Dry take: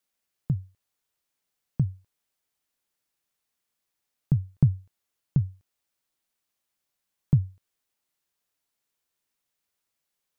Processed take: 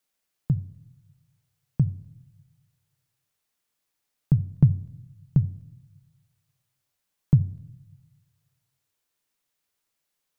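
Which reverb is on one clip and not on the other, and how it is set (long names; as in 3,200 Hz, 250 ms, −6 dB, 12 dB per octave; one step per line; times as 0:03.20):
rectangular room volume 2,200 cubic metres, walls furnished, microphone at 0.46 metres
level +2 dB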